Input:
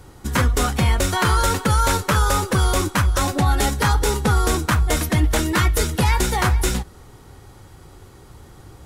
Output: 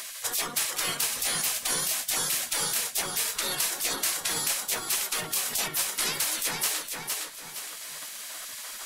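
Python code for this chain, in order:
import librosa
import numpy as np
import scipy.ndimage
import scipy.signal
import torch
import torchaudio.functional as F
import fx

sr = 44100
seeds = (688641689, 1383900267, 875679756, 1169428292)

p1 = fx.spec_gate(x, sr, threshold_db=-25, keep='weak')
p2 = fx.high_shelf(p1, sr, hz=5200.0, db=4.5)
p3 = p2 + fx.echo_feedback(p2, sr, ms=463, feedback_pct=19, wet_db=-8.5, dry=0)
y = fx.band_squash(p3, sr, depth_pct=70)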